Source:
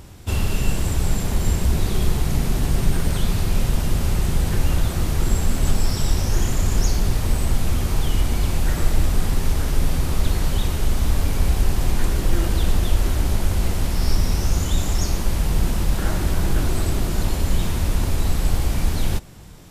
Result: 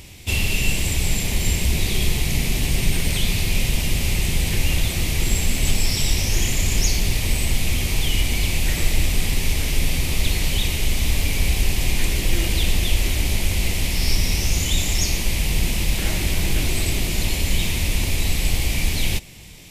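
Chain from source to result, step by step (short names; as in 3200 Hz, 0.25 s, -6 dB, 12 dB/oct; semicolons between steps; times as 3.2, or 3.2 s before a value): resonant high shelf 1800 Hz +7.5 dB, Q 3; gain -1.5 dB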